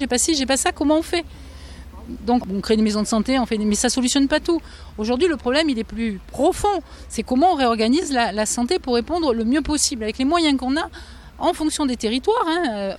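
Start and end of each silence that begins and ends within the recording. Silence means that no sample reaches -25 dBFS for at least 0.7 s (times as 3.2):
1.21–2.09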